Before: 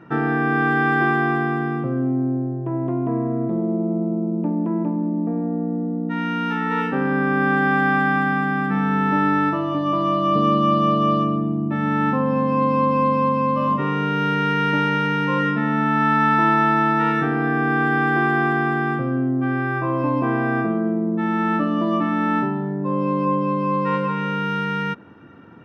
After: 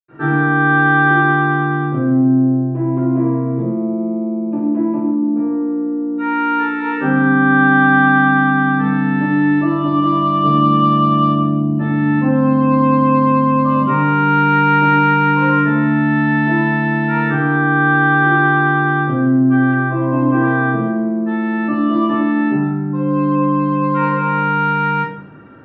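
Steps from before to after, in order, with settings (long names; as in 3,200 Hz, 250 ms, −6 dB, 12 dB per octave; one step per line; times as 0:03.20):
0:19.63–0:20.35: high-frequency loss of the air 240 metres
convolution reverb RT60 0.75 s, pre-delay 83 ms, DRR −60 dB
level −1.5 dB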